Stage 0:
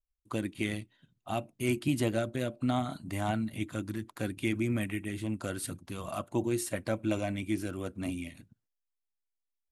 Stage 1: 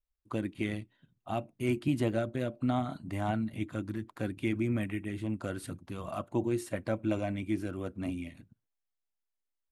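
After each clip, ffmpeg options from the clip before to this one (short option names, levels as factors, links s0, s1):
-af "highshelf=f=3500:g=-11"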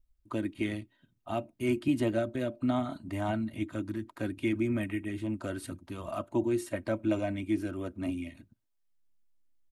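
-filter_complex "[0:a]acrossover=split=260[s0][s1];[s0]acompressor=mode=upward:threshold=0.00158:ratio=2.5[s2];[s2][s1]amix=inputs=2:normalize=0,aecho=1:1:3.2:0.44"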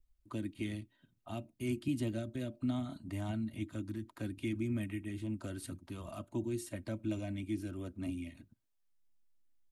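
-filter_complex "[0:a]acrossover=split=260|3000[s0][s1][s2];[s1]acompressor=threshold=0.00282:ratio=2[s3];[s0][s3][s2]amix=inputs=3:normalize=0,volume=0.794"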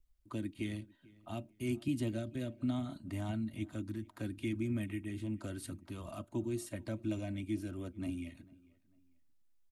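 -filter_complex "[0:a]asplit=2[s0][s1];[s1]adelay=446,lowpass=f=3000:p=1,volume=0.0708,asplit=2[s2][s3];[s3]adelay=446,lowpass=f=3000:p=1,volume=0.33[s4];[s0][s2][s4]amix=inputs=3:normalize=0"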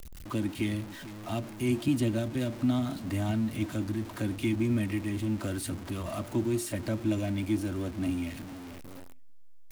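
-af "aeval=exprs='val(0)+0.5*0.00531*sgn(val(0))':c=same,volume=2.24"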